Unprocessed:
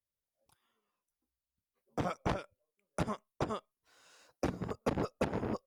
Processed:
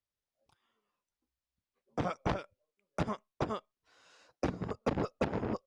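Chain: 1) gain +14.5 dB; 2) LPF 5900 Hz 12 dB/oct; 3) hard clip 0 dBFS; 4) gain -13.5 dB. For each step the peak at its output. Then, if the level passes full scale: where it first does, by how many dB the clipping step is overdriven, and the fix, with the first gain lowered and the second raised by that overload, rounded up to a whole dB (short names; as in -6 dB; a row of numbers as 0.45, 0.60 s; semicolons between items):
-5.5, -5.5, -5.5, -19.0 dBFS; no overload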